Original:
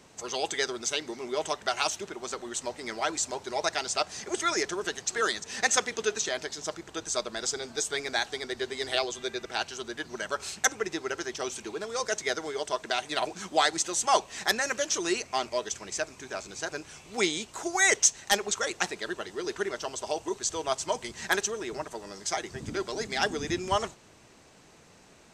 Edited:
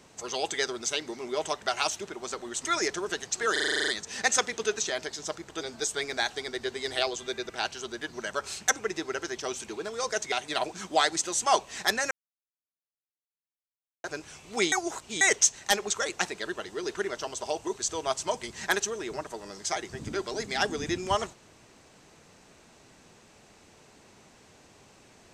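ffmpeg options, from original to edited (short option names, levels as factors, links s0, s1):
-filter_complex "[0:a]asplit=17[s0][s1][s2][s3][s4][s5][s6][s7][s8][s9][s10][s11][s12][s13][s14][s15][s16];[s0]atrim=end=2.652[s17];[s1]atrim=start=4.398:end=5.312[s18];[s2]atrim=start=5.268:end=5.312[s19];[s3]atrim=start=5.268:end=5.312[s20];[s4]atrim=start=5.268:end=5.312[s21];[s5]atrim=start=5.268:end=5.312[s22];[s6]atrim=start=5.268:end=5.312[s23];[s7]atrim=start=5.268:end=5.312[s24];[s8]atrim=start=5.268:end=5.312[s25];[s9]atrim=start=5.268:end=5.312[s26];[s10]atrim=start=5.268:end=7.002[s27];[s11]atrim=start=7.568:end=12.282[s28];[s12]atrim=start=12.928:end=14.72,asetpts=PTS-STARTPTS,afade=t=out:st=1.788:d=0.004:c=hsin[s29];[s13]atrim=start=14.72:end=16.65,asetpts=PTS-STARTPTS,volume=0[s30];[s14]atrim=start=16.65:end=17.332,asetpts=PTS-STARTPTS,afade=t=in:d=0.004:c=hsin[s31];[s15]atrim=start=17.328:end=17.822,asetpts=PTS-STARTPTS,areverse[s32];[s16]atrim=start=17.818[s33];[s17][s18]acrossfade=d=0.004:c1=hsin:c2=hsin[s34];[s34][s19]acrossfade=d=0.004:c1=hsin:c2=hsin[s35];[s35][s20]acrossfade=d=0.004:c1=hsin:c2=hsin[s36];[s36][s21]acrossfade=d=0.004:c1=hsin:c2=hsin[s37];[s37][s22]acrossfade=d=0.004:c1=hsin:c2=hsin[s38];[s38][s23]acrossfade=d=0.004:c1=hsin:c2=hsin[s39];[s39][s24]acrossfade=d=0.004:c1=hsin:c2=hsin[s40];[s40][s25]acrossfade=d=0.004:c1=hsin:c2=hsin[s41];[s41][s26]acrossfade=d=0.004:c1=hsin:c2=hsin[s42];[s42][s27]acrossfade=d=0.004:c1=hsin:c2=hsin[s43];[s43][s28]acrossfade=d=0.004:c1=hsin:c2=hsin[s44];[s29][s30][s31]concat=n=3:v=0:a=1[s45];[s44][s45]acrossfade=d=0.004:c1=hsin:c2=hsin[s46];[s46][s32]acrossfade=d=0.004:c1=hsin:c2=hsin[s47];[s47][s33]acrossfade=d=0.004:c1=hsin:c2=hsin"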